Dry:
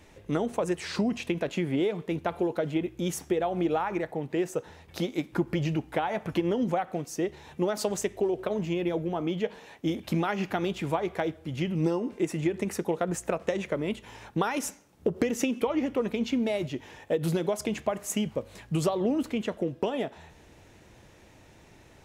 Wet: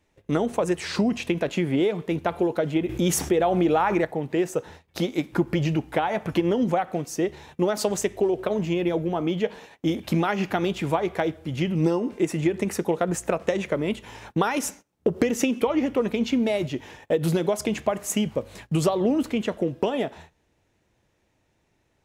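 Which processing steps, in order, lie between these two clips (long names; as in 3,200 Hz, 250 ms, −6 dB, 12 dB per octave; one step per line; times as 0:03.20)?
noise gate −47 dBFS, range −19 dB
0:02.89–0:04.05: envelope flattener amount 50%
level +4.5 dB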